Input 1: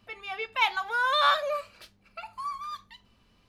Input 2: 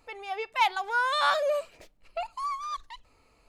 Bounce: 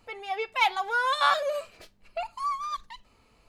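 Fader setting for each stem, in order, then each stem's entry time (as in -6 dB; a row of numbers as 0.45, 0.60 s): -4.0, 0.0 dB; 0.00, 0.00 s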